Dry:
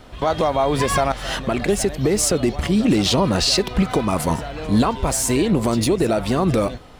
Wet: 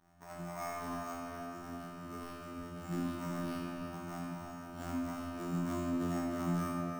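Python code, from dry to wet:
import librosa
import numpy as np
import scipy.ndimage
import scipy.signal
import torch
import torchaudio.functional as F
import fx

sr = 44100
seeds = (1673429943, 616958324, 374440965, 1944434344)

p1 = scipy.signal.medfilt(x, 41)
p2 = scipy.signal.sosfilt(scipy.signal.butter(4, 40.0, 'highpass', fs=sr, output='sos'), p1)
p3 = fx.peak_eq(p2, sr, hz=72.0, db=-13.0, octaves=3.0)
p4 = fx.auto_swell(p3, sr, attack_ms=108.0)
p5 = fx.comb_fb(p4, sr, f0_hz=58.0, decay_s=0.52, harmonics='all', damping=0.0, mix_pct=100)
p6 = fx.robotise(p5, sr, hz=86.4)
p7 = fx.fixed_phaser(p6, sr, hz=1200.0, stages=4)
p8 = fx.comb_fb(p7, sr, f0_hz=610.0, decay_s=0.17, harmonics='all', damping=0.0, mix_pct=60)
p9 = fx.cheby_harmonics(p8, sr, harmonics=(4,), levels_db=(-25,), full_scale_db=-33.0)
p10 = np.repeat(p9[::6], 6)[:len(p9)]
p11 = p10 + fx.echo_single(p10, sr, ms=327, db=-11.0, dry=0)
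p12 = fx.room_shoebox(p11, sr, seeds[0], volume_m3=190.0, walls='hard', distance_m=0.72)
y = p12 * librosa.db_to_amplitude(6.0)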